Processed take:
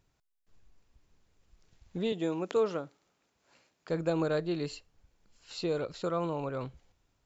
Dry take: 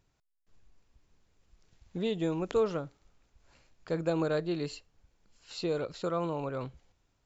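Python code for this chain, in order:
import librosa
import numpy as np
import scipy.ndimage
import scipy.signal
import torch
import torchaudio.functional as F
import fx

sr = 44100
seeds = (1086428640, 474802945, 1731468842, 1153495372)

y = fx.highpass(x, sr, hz=200.0, slope=12, at=(2.12, 3.9))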